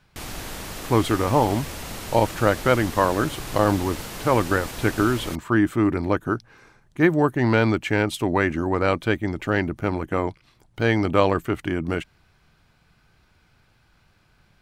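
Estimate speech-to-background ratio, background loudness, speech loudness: 11.5 dB, -34.0 LUFS, -22.5 LUFS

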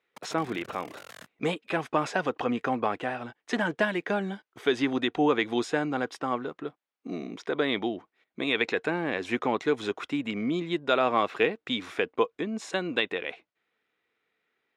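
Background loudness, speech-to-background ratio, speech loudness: -48.0 LUFS, 19.0 dB, -29.0 LUFS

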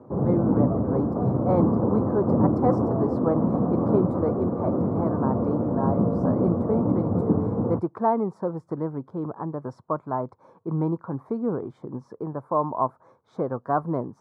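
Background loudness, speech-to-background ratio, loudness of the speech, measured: -24.5 LUFS, -4.5 dB, -29.0 LUFS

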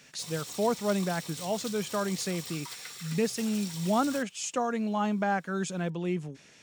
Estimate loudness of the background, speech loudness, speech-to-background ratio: -40.0 LUFS, -31.0 LUFS, 9.0 dB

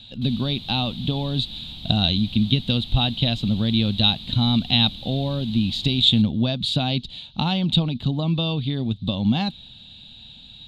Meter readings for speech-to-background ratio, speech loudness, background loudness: 14.5 dB, -22.0 LUFS, -36.5 LUFS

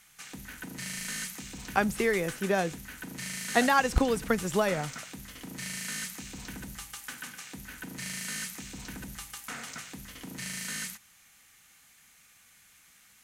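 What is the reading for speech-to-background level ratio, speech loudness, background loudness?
10.5 dB, -28.0 LUFS, -38.5 LUFS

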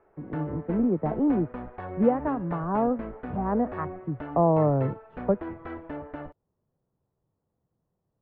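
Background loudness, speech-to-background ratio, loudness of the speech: -39.0 LUFS, 11.5 dB, -27.5 LUFS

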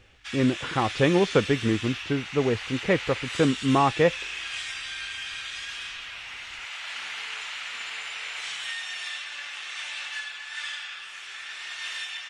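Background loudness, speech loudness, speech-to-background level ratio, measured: -33.5 LUFS, -25.0 LUFS, 8.5 dB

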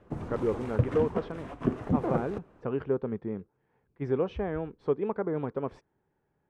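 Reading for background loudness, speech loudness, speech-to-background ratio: -32.5 LUFS, -33.0 LUFS, -0.5 dB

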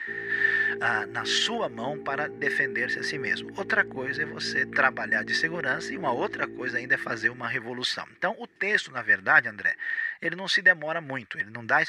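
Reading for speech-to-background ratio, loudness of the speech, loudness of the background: 14.0 dB, -26.0 LUFS, -40.0 LUFS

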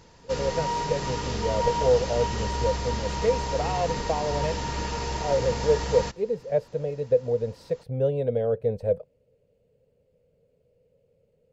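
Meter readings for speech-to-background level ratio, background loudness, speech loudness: 2.5 dB, -30.0 LUFS, -27.5 LUFS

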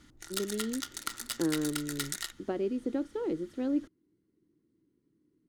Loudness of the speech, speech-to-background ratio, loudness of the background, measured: -34.5 LUFS, 3.0 dB, -37.5 LUFS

